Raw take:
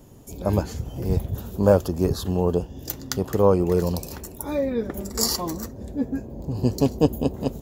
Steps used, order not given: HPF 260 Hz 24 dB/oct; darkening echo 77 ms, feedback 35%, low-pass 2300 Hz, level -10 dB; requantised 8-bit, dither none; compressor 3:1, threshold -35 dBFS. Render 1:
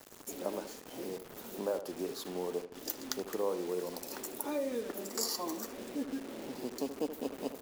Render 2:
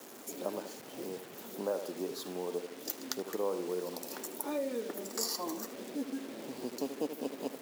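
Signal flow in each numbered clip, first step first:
compressor > HPF > requantised > darkening echo; darkening echo > compressor > requantised > HPF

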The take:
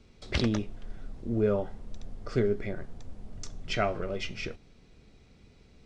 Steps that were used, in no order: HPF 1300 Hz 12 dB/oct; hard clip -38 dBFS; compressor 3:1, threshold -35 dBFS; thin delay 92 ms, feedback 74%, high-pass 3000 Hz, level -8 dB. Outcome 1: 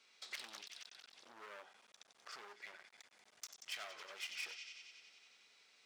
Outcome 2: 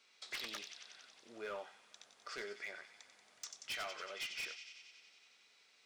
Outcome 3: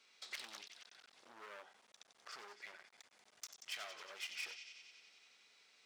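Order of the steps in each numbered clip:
thin delay > compressor > hard clip > HPF; HPF > compressor > thin delay > hard clip; compressor > thin delay > hard clip > HPF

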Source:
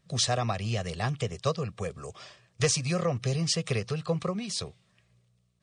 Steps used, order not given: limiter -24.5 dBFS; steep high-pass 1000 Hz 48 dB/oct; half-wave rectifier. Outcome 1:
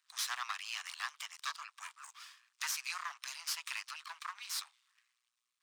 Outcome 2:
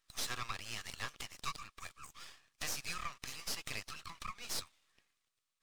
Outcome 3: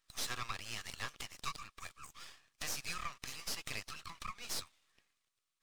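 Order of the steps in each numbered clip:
half-wave rectifier > steep high-pass > limiter; steep high-pass > half-wave rectifier > limiter; steep high-pass > limiter > half-wave rectifier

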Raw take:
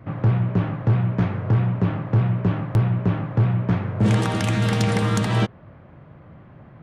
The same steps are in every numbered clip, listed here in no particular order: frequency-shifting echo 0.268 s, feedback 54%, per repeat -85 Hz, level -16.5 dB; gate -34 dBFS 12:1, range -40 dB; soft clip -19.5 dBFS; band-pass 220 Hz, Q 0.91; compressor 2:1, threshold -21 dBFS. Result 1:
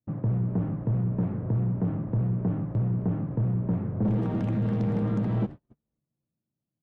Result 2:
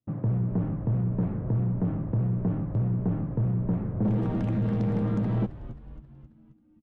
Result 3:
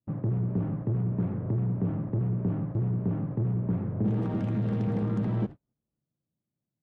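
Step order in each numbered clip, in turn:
frequency-shifting echo > band-pass > soft clip > gate > compressor; band-pass > gate > frequency-shifting echo > soft clip > compressor; soft clip > compressor > frequency-shifting echo > band-pass > gate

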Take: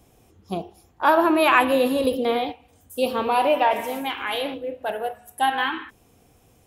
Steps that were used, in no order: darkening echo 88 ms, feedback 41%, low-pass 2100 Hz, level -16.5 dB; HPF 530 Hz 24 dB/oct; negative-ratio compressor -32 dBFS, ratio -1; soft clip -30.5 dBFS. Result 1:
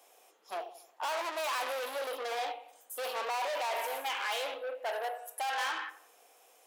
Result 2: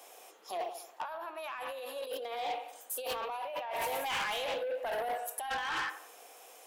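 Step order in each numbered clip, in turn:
darkening echo > soft clip > negative-ratio compressor > HPF; darkening echo > negative-ratio compressor > HPF > soft clip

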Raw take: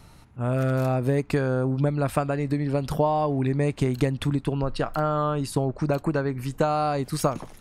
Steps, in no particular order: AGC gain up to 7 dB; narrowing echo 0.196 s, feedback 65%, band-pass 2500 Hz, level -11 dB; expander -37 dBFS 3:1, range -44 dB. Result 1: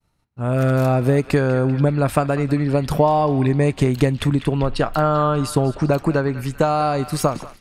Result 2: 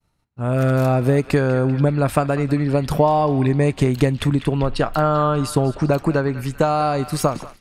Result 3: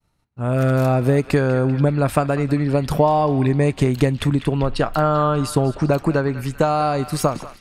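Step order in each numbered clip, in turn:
narrowing echo > AGC > expander; narrowing echo > expander > AGC; AGC > narrowing echo > expander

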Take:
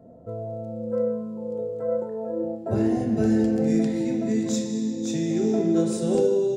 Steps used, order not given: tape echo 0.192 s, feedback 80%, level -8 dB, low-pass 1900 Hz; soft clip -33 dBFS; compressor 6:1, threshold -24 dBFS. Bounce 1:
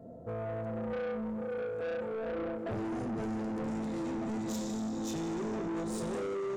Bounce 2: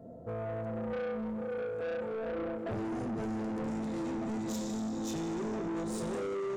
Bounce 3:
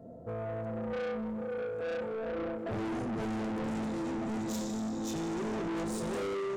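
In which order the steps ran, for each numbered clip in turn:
compressor > tape echo > soft clip; tape echo > compressor > soft clip; tape echo > soft clip > compressor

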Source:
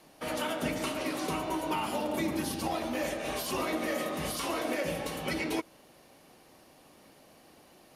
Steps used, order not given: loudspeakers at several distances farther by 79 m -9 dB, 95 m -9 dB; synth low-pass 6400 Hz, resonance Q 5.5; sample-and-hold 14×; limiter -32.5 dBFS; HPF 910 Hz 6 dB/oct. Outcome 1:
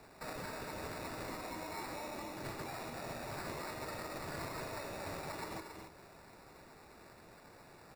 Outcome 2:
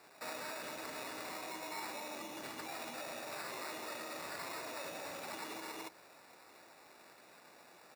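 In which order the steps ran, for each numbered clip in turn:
synth low-pass > limiter > HPF > sample-and-hold > loudspeakers at several distances; synth low-pass > sample-and-hold > loudspeakers at several distances > limiter > HPF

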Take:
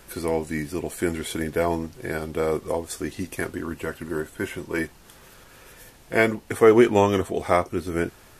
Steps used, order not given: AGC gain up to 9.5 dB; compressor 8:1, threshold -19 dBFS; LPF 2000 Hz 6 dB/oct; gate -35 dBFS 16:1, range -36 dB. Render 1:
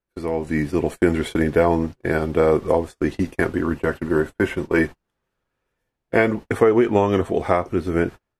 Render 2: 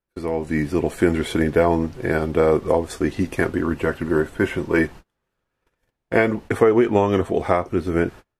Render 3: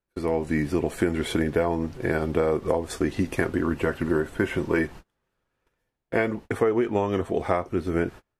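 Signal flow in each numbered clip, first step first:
LPF > gate > compressor > AGC; compressor > LPF > AGC > gate; AGC > LPF > gate > compressor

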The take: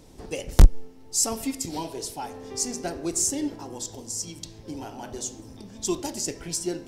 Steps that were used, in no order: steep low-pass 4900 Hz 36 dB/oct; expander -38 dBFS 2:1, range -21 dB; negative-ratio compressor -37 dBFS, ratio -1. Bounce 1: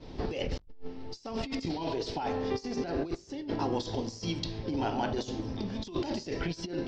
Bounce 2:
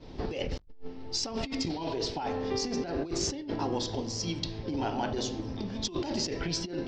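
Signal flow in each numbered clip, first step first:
negative-ratio compressor > expander > steep low-pass; steep low-pass > negative-ratio compressor > expander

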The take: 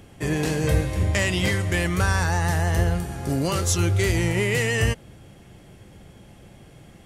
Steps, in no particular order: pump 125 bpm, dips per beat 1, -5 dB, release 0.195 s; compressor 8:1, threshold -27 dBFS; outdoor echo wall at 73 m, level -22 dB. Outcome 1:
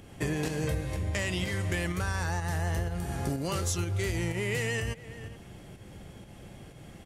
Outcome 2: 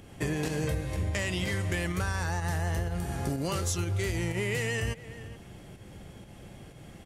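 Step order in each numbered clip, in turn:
outdoor echo > compressor > pump; pump > outdoor echo > compressor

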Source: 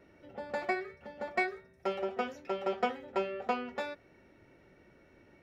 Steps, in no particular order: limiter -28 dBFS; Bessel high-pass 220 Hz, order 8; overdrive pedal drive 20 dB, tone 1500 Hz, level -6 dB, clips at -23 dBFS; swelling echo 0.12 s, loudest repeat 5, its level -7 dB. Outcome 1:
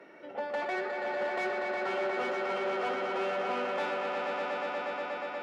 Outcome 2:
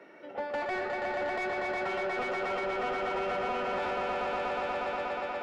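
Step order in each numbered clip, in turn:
limiter > swelling echo > overdrive pedal > Bessel high-pass; swelling echo > limiter > Bessel high-pass > overdrive pedal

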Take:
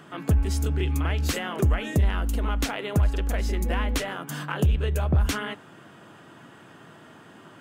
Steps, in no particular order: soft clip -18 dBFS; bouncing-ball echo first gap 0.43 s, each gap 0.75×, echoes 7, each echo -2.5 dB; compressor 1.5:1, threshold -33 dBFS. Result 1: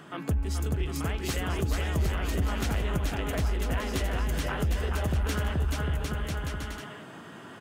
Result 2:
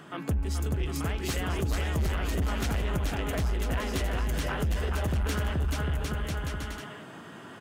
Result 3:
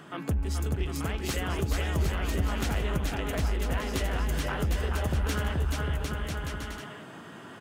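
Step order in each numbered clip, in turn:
bouncing-ball echo > compressor > soft clip; bouncing-ball echo > soft clip > compressor; soft clip > bouncing-ball echo > compressor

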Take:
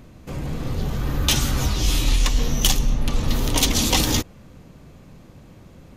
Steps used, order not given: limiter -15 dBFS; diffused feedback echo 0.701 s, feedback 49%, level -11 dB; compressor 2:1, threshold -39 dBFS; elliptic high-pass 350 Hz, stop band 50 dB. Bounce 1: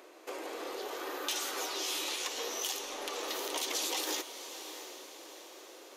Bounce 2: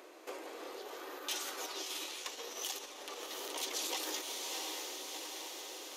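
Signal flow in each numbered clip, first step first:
elliptic high-pass > limiter > compressor > diffused feedback echo; diffused feedback echo > limiter > compressor > elliptic high-pass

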